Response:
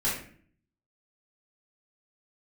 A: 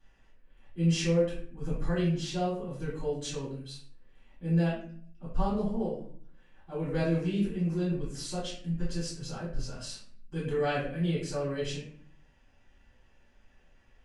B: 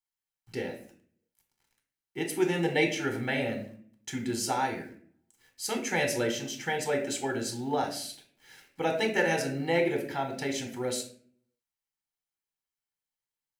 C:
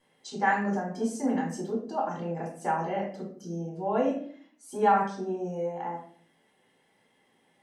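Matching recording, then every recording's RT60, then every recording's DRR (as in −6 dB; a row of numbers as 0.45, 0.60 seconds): A; 0.50, 0.50, 0.50 seconds; −9.5, 2.5, −4.0 decibels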